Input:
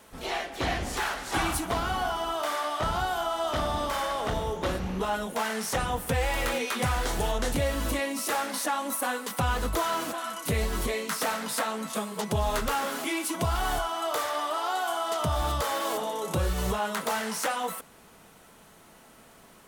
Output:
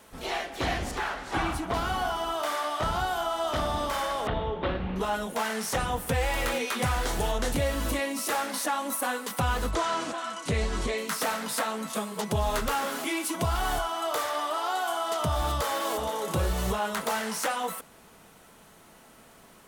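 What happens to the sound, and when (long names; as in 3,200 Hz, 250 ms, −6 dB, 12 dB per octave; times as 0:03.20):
0:00.91–0:01.74: low-pass filter 2,500 Hz 6 dB per octave
0:04.27–0:04.96: Butterworth low-pass 3,700 Hz
0:09.71–0:10.98: low-pass filter 8,300 Hz 24 dB per octave
0:15.51–0:16.25: delay throw 470 ms, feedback 35%, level −10.5 dB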